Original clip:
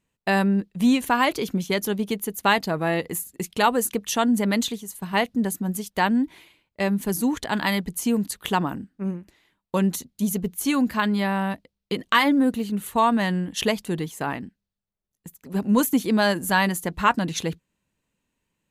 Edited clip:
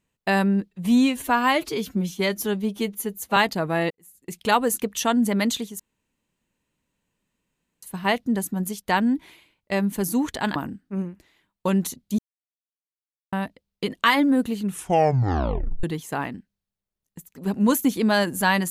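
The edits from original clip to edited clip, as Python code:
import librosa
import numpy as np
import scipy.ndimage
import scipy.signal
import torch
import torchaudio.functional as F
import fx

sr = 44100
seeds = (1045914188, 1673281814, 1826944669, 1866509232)

y = fx.edit(x, sr, fx.stretch_span(start_s=0.71, length_s=1.77, factor=1.5),
    fx.fade_in_span(start_s=3.02, length_s=0.54, curve='qua'),
    fx.insert_room_tone(at_s=4.91, length_s=2.03),
    fx.cut(start_s=7.64, length_s=1.0),
    fx.silence(start_s=10.27, length_s=1.14),
    fx.tape_stop(start_s=12.73, length_s=1.19), tone=tone)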